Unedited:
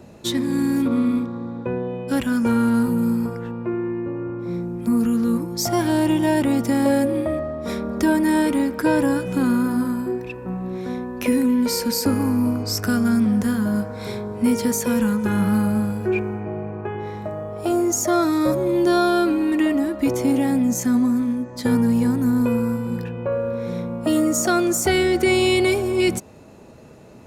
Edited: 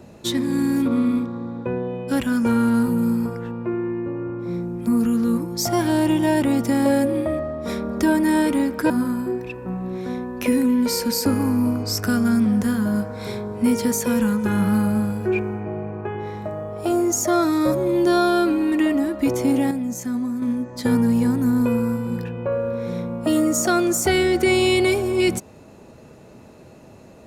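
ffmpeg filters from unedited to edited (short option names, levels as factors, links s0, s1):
-filter_complex "[0:a]asplit=4[s0][s1][s2][s3];[s0]atrim=end=8.902[s4];[s1]atrim=start=9.698:end=20.512[s5];[s2]atrim=start=20.508:end=21.222,asetpts=PTS-STARTPTS,volume=0.473[s6];[s3]atrim=start=21.218[s7];[s4][s5]acrossfade=d=0.004:c1=hsin:c2=hsin[s8];[s8][s6]acrossfade=d=0.004:c1=hsin:c2=hsin[s9];[s9][s7]acrossfade=d=0.004:c1=hsin:c2=hsin"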